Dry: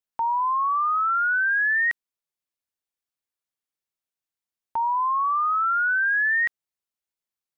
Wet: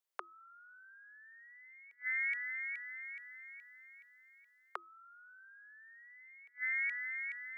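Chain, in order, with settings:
echo with a time of its own for lows and highs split 1,200 Hz, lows 105 ms, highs 422 ms, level −14 dB
gate with flip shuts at −22 dBFS, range −36 dB
frequency shifter +340 Hz

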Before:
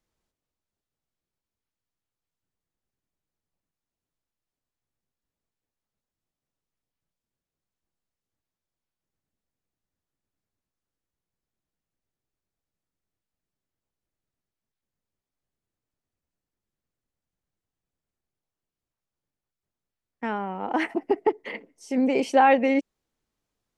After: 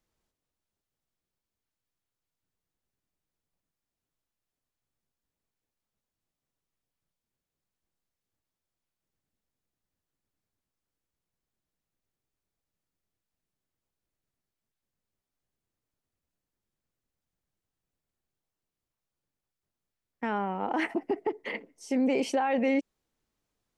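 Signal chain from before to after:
brickwall limiter −19 dBFS, peak gain reduction 12 dB

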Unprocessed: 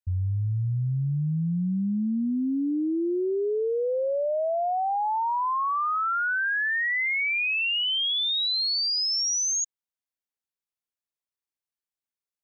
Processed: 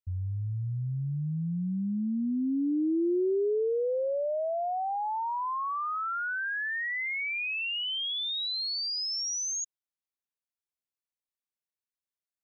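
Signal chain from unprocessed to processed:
dynamic equaliser 360 Hz, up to +6 dB, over −41 dBFS, Q 1.1
level −6.5 dB

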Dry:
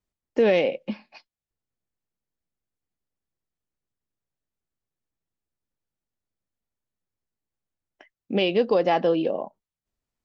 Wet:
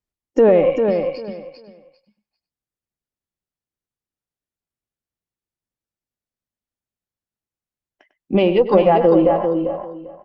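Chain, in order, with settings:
noise reduction from a noise print of the clip's start 14 dB
in parallel at +3 dB: brickwall limiter −18.5 dBFS, peak gain reduction 8 dB
on the sum: harmonic generator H 4 −25 dB, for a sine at −6.5 dBFS
slap from a distant wall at 17 metres, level −12 dB
treble cut that deepens with the level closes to 1,100 Hz, closed at −12 dBFS
on a send: repeating echo 396 ms, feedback 20%, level −6 dB
on the sum: level +3 dB

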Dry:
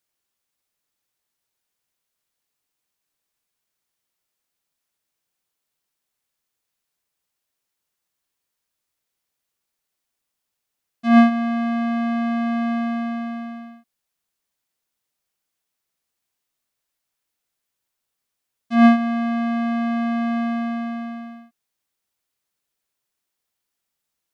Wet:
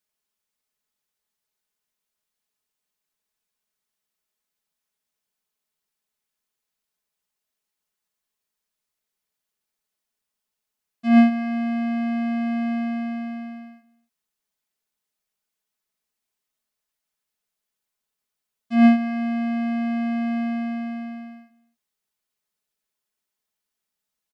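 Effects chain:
comb filter 4.7 ms, depth 56%
single-tap delay 255 ms −22 dB
level −4.5 dB

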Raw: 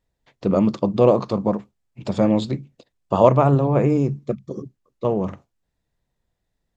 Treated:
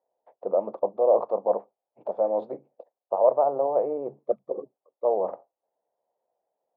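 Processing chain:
reversed playback
downward compressor 6 to 1, threshold −23 dBFS, peak gain reduction 14.5 dB
reversed playback
flat-topped band-pass 650 Hz, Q 1.8
level +9 dB

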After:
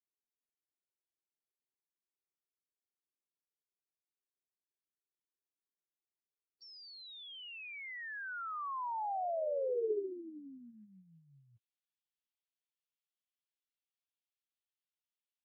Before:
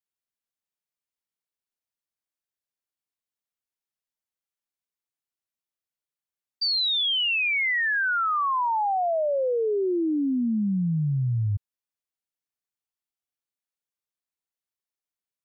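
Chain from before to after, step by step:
band-pass filter sweep 350 Hz → 3,100 Hz, 0:09.91–0:11.20
phase-vocoder pitch shift with formants kept +3 semitones

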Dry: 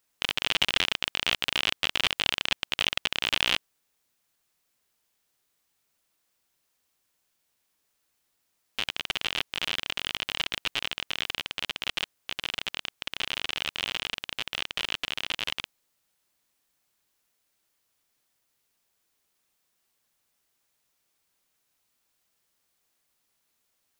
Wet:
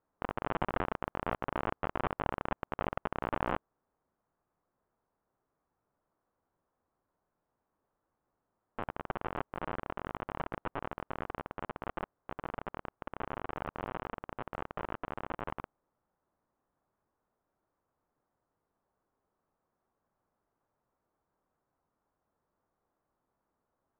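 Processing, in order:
low-pass filter 1,200 Hz 24 dB per octave
level +4 dB

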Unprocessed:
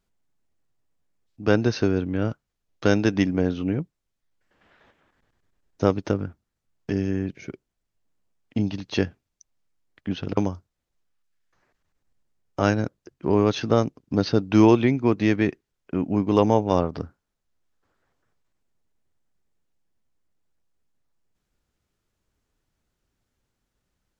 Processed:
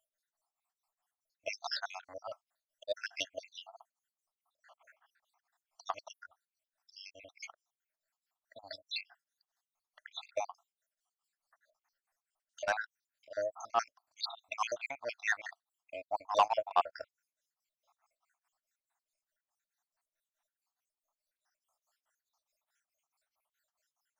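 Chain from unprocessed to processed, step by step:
time-frequency cells dropped at random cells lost 72%
elliptic high-pass filter 640 Hz, stop band 40 dB
parametric band 2,600 Hz −7 dB 1.2 octaves
soft clipping −24 dBFS, distortion −13 dB
tremolo along a rectified sine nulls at 4.7 Hz
level +8.5 dB

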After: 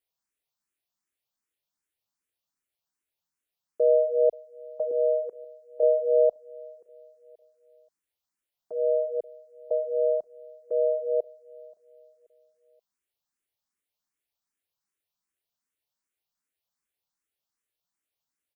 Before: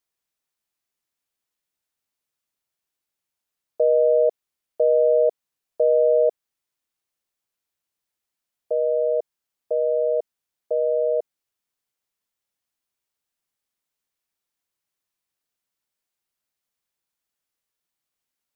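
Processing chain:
0:04.91–0:05.83: low-shelf EQ 400 Hz −10.5 dB
repeating echo 530 ms, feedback 39%, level −23 dB
frequency shifter mixed with the dry sound +2.6 Hz
level −1 dB

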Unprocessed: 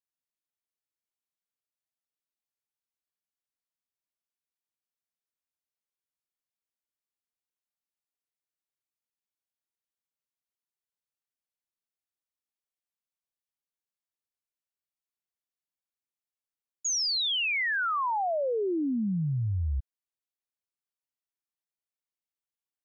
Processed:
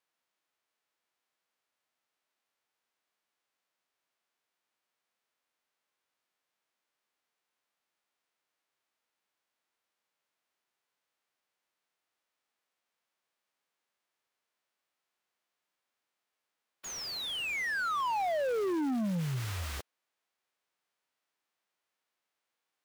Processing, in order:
spectral envelope flattened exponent 0.3
mid-hump overdrive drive 33 dB, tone 1,600 Hz, clips at −15.5 dBFS
level −9 dB

